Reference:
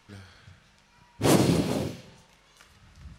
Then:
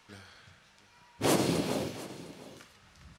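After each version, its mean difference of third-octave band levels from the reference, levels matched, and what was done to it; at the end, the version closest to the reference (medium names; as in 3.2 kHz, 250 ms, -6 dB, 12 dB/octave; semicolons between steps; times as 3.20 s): 5.0 dB: bass shelf 180 Hz -11 dB; compression 1.5:1, threshold -28 dBFS, peak gain reduction 4 dB; on a send: delay 706 ms -17 dB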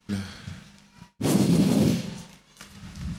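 7.5 dB: peaking EQ 200 Hz +12.5 dB 1.1 oct; reverse; compression 12:1, threshold -26 dBFS, peak gain reduction 19 dB; reverse; expander -49 dBFS; treble shelf 3.5 kHz +7 dB; trim +8.5 dB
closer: first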